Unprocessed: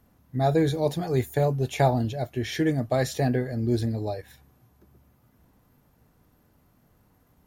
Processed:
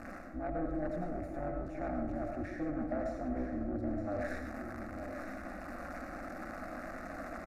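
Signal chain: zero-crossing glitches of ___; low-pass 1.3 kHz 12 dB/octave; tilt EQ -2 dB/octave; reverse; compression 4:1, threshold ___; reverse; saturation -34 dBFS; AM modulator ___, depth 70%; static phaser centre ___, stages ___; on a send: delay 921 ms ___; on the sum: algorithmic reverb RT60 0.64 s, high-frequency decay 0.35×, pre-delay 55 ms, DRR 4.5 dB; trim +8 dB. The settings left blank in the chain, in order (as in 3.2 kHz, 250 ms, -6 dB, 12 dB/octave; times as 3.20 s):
-16 dBFS, -33 dBFS, 190 Hz, 640 Hz, 8, -9.5 dB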